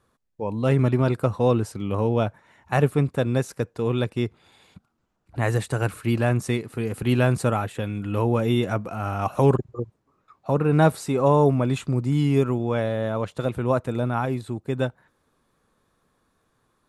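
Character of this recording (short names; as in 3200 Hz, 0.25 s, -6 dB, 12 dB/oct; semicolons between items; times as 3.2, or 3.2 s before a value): noise floor -71 dBFS; spectral tilt -6.5 dB/oct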